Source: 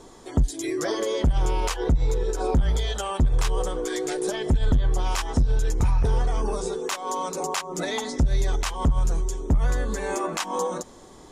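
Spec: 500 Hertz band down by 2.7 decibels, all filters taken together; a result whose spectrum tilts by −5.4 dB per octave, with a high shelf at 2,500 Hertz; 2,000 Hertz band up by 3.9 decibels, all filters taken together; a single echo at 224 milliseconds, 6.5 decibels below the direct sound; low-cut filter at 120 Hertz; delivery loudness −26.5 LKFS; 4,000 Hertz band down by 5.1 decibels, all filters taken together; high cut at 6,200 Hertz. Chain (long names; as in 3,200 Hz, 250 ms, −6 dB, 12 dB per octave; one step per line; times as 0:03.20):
high-pass filter 120 Hz
low-pass filter 6,200 Hz
parametric band 500 Hz −3.5 dB
parametric band 2,000 Hz +8 dB
high-shelf EQ 2,500 Hz −4 dB
parametric band 4,000 Hz −5.5 dB
single-tap delay 224 ms −6.5 dB
level +3 dB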